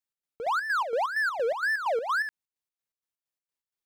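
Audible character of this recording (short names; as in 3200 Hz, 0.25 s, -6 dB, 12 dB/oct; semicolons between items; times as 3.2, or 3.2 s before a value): chopped level 4.3 Hz, depth 60%, duty 55%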